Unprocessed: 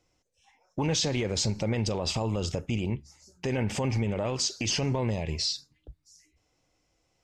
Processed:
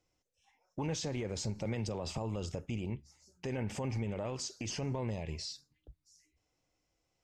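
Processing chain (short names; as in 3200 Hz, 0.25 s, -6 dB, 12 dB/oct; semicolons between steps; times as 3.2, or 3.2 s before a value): dynamic EQ 3700 Hz, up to -7 dB, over -43 dBFS, Q 0.94; 1.65–2.18 three-band squash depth 40%; gain -8 dB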